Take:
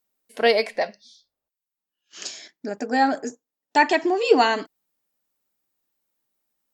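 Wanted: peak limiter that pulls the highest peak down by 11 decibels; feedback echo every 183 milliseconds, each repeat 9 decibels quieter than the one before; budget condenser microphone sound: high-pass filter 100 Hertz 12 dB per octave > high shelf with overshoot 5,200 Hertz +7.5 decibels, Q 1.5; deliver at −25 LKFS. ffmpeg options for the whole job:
ffmpeg -i in.wav -af "alimiter=limit=-14.5dB:level=0:latency=1,highpass=100,highshelf=frequency=5200:width_type=q:width=1.5:gain=7.5,aecho=1:1:183|366|549|732:0.355|0.124|0.0435|0.0152,volume=1dB" out.wav

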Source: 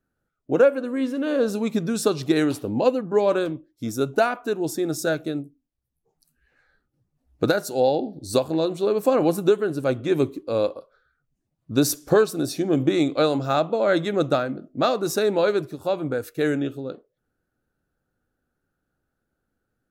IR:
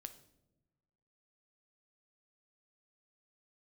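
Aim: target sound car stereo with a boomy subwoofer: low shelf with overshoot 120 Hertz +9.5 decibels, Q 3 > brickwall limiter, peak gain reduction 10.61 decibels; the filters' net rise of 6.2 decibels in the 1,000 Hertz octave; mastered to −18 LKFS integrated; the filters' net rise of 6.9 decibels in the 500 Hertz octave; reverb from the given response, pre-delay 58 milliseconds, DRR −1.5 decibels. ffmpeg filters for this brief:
-filter_complex "[0:a]equalizer=frequency=500:width_type=o:gain=7.5,equalizer=frequency=1000:width_type=o:gain=6,asplit=2[link_01][link_02];[1:a]atrim=start_sample=2205,adelay=58[link_03];[link_02][link_03]afir=irnorm=-1:irlink=0,volume=7dB[link_04];[link_01][link_04]amix=inputs=2:normalize=0,lowshelf=frequency=120:width_type=q:width=3:gain=9.5,volume=-1.5dB,alimiter=limit=-8dB:level=0:latency=1"

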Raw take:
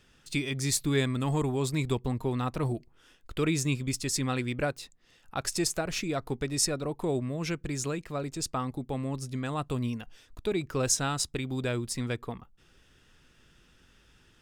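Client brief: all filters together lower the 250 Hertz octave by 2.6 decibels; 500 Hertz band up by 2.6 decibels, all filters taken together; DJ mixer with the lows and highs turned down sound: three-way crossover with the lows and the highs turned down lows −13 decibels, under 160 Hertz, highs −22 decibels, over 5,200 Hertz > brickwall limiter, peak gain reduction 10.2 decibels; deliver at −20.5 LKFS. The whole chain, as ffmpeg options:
ffmpeg -i in.wav -filter_complex "[0:a]acrossover=split=160 5200:gain=0.224 1 0.0794[link_01][link_02][link_03];[link_01][link_02][link_03]amix=inputs=3:normalize=0,equalizer=frequency=250:width_type=o:gain=-3.5,equalizer=frequency=500:width_type=o:gain=4.5,volume=15.5dB,alimiter=limit=-9dB:level=0:latency=1" out.wav

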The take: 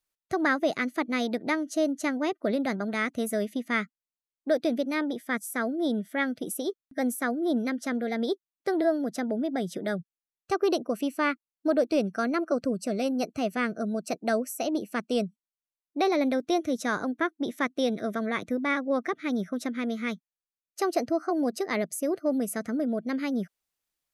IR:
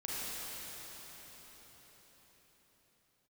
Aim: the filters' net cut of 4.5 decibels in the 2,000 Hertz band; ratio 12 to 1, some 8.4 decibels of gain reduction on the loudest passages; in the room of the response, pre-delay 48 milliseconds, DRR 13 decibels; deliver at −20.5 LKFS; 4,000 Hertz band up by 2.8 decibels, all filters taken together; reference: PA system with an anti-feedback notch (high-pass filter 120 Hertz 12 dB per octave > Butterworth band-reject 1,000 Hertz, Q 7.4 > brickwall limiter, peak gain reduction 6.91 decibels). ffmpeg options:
-filter_complex "[0:a]equalizer=frequency=2000:width_type=o:gain=-6.5,equalizer=frequency=4000:width_type=o:gain=5,acompressor=threshold=-28dB:ratio=12,asplit=2[link_01][link_02];[1:a]atrim=start_sample=2205,adelay=48[link_03];[link_02][link_03]afir=irnorm=-1:irlink=0,volume=-17dB[link_04];[link_01][link_04]amix=inputs=2:normalize=0,highpass=120,asuperstop=centerf=1000:order=8:qfactor=7.4,volume=15dB,alimiter=limit=-10.5dB:level=0:latency=1"

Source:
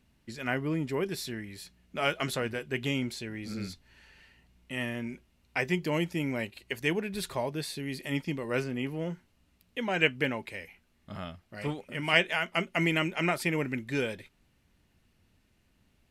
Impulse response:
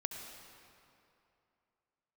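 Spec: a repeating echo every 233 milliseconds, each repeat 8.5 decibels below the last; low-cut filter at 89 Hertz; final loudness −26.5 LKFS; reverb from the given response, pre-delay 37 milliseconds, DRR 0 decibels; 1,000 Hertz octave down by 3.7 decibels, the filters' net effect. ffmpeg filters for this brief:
-filter_complex "[0:a]highpass=89,equalizer=frequency=1000:width_type=o:gain=-5.5,aecho=1:1:233|466|699|932:0.376|0.143|0.0543|0.0206,asplit=2[link_01][link_02];[1:a]atrim=start_sample=2205,adelay=37[link_03];[link_02][link_03]afir=irnorm=-1:irlink=0,volume=0dB[link_04];[link_01][link_04]amix=inputs=2:normalize=0,volume=2.5dB"

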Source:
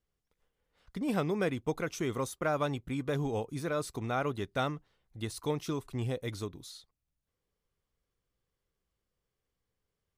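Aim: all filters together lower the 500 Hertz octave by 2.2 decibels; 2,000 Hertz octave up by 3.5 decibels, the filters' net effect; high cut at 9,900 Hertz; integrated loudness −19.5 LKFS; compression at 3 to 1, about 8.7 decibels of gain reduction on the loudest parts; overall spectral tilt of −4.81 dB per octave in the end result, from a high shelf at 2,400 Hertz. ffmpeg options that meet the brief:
ffmpeg -i in.wav -af "lowpass=9900,equalizer=frequency=500:width_type=o:gain=-3,equalizer=frequency=2000:width_type=o:gain=3.5,highshelf=frequency=2400:gain=3.5,acompressor=threshold=-38dB:ratio=3,volume=22dB" out.wav

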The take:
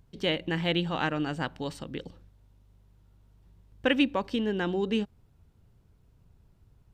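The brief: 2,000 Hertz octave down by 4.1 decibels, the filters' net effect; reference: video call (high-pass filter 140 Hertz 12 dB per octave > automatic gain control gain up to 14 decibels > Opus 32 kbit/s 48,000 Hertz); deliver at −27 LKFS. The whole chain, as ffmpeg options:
ffmpeg -i in.wav -af "highpass=140,equalizer=frequency=2000:width_type=o:gain=-5.5,dynaudnorm=maxgain=14dB,volume=4dB" -ar 48000 -c:a libopus -b:a 32k out.opus

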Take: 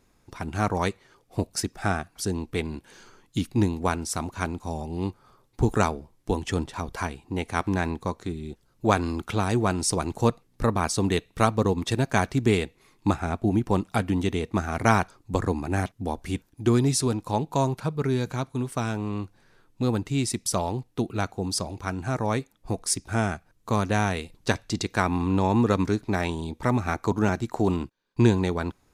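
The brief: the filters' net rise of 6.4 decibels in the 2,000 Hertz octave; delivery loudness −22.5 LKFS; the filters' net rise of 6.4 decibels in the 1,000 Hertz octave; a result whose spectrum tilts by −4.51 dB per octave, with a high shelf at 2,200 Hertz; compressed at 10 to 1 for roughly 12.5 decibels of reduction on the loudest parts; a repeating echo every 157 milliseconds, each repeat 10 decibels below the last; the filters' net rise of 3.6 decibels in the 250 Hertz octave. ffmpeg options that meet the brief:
ffmpeg -i in.wav -af "equalizer=frequency=250:width_type=o:gain=4,equalizer=frequency=1000:width_type=o:gain=6,equalizer=frequency=2000:width_type=o:gain=3,highshelf=frequency=2200:gain=6,acompressor=threshold=-23dB:ratio=10,aecho=1:1:157|314|471|628:0.316|0.101|0.0324|0.0104,volume=6.5dB" out.wav

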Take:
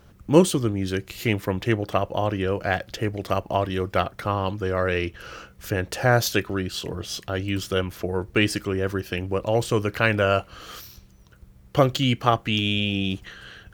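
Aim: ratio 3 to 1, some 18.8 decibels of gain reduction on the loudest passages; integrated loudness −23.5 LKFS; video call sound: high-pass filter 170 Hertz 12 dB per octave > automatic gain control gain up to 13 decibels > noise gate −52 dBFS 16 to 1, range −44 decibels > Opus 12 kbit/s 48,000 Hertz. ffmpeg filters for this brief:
ffmpeg -i in.wav -af "acompressor=threshold=-36dB:ratio=3,highpass=170,dynaudnorm=maxgain=13dB,agate=range=-44dB:threshold=-52dB:ratio=16,volume=15dB" -ar 48000 -c:a libopus -b:a 12k out.opus

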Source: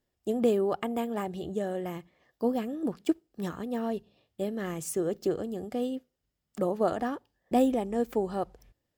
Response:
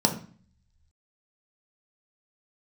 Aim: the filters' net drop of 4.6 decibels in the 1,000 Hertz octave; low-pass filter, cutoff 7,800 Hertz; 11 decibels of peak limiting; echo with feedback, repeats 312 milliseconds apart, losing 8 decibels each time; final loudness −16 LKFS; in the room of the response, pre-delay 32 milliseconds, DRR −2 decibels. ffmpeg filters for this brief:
-filter_complex "[0:a]lowpass=7800,equalizer=frequency=1000:width_type=o:gain=-7.5,alimiter=level_in=2dB:limit=-24dB:level=0:latency=1,volume=-2dB,aecho=1:1:312|624|936|1248|1560:0.398|0.159|0.0637|0.0255|0.0102,asplit=2[link_01][link_02];[1:a]atrim=start_sample=2205,adelay=32[link_03];[link_02][link_03]afir=irnorm=-1:irlink=0,volume=-10.5dB[link_04];[link_01][link_04]amix=inputs=2:normalize=0,volume=9.5dB"

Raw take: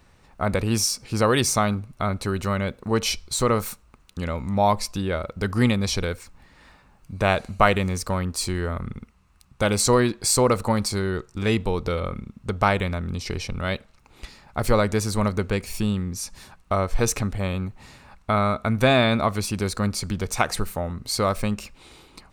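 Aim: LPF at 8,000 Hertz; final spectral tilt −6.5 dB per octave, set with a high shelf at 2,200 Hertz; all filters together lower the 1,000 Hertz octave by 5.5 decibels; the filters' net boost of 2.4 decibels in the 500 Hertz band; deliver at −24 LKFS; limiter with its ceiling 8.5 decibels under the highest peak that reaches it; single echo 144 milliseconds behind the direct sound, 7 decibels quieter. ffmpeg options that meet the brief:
ffmpeg -i in.wav -af "lowpass=8000,equalizer=frequency=500:width_type=o:gain=5.5,equalizer=frequency=1000:width_type=o:gain=-8,highshelf=frequency=2200:gain=-8.5,alimiter=limit=-12.5dB:level=0:latency=1,aecho=1:1:144:0.447,volume=1.5dB" out.wav

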